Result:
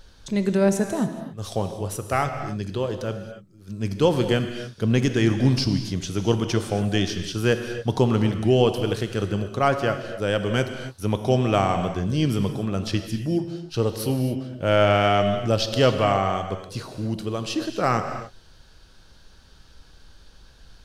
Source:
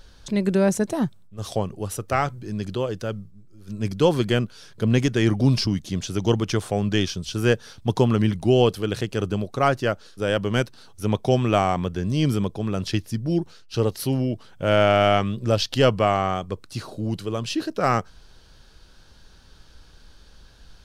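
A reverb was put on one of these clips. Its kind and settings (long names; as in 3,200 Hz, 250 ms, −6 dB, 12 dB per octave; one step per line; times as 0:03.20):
reverb whose tail is shaped and stops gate 310 ms flat, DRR 7 dB
level −1 dB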